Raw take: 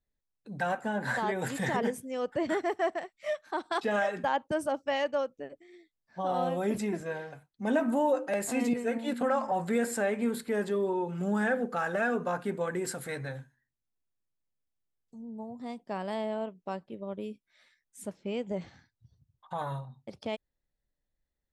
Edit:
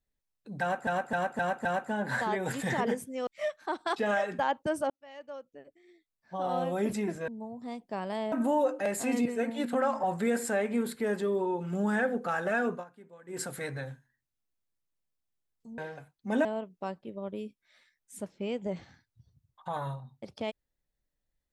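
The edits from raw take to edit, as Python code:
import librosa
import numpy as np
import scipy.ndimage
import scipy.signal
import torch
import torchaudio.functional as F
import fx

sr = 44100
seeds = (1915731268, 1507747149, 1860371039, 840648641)

y = fx.edit(x, sr, fx.repeat(start_s=0.61, length_s=0.26, count=5),
    fx.cut(start_s=2.23, length_s=0.89),
    fx.fade_in_span(start_s=4.75, length_s=1.87),
    fx.swap(start_s=7.13, length_s=0.67, other_s=15.26, other_length_s=1.04),
    fx.fade_down_up(start_s=12.19, length_s=0.7, db=-20.5, fade_s=0.14), tone=tone)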